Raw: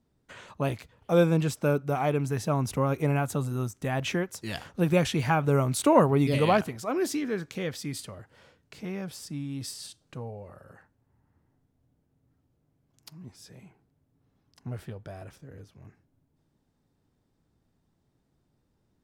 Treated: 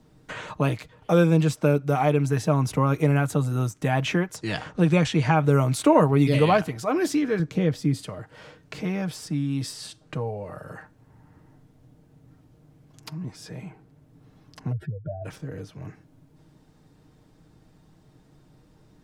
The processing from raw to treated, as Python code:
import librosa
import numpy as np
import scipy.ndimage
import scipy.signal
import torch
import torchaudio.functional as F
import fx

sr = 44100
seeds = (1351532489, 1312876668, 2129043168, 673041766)

y = fx.lowpass(x, sr, hz=9400.0, slope=24, at=(4.36, 5.36))
y = fx.tilt_shelf(y, sr, db=7.0, hz=740.0, at=(7.39, 8.03))
y = fx.spec_expand(y, sr, power=2.8, at=(14.71, 15.24), fade=0.02)
y = fx.high_shelf(y, sr, hz=12000.0, db=-9.0)
y = y + 0.42 * np.pad(y, (int(6.5 * sr / 1000.0), 0))[:len(y)]
y = fx.band_squash(y, sr, depth_pct=40)
y = F.gain(torch.from_numpy(y), 3.5).numpy()